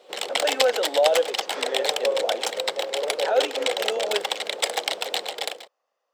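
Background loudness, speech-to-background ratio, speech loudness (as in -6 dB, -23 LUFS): -25.5 LUFS, -1.0 dB, -26.5 LUFS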